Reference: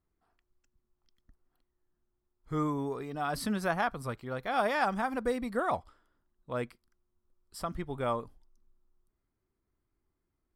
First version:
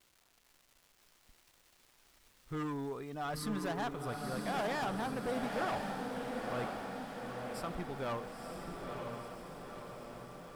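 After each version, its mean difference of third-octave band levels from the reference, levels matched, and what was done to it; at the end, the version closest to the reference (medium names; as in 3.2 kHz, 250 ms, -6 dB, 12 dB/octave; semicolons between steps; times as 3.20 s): 9.0 dB: crackle 590 per s -49 dBFS; hard clipper -29 dBFS, distortion -10 dB; echo that smears into a reverb 960 ms, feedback 62%, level -3 dB; trim -4.5 dB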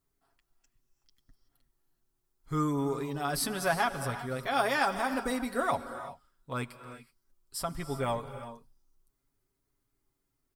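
6.0 dB: treble shelf 3.7 kHz +10 dB; comb 7.3 ms; gated-style reverb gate 400 ms rising, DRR 10.5 dB; trim -1 dB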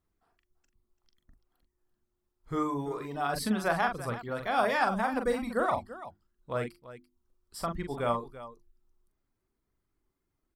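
3.0 dB: reverb removal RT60 0.56 s; hum notches 50/100/150/200/250/300/350 Hz; on a send: multi-tap echo 42/338 ms -6.5/-14.5 dB; on the sum: trim +2 dB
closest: third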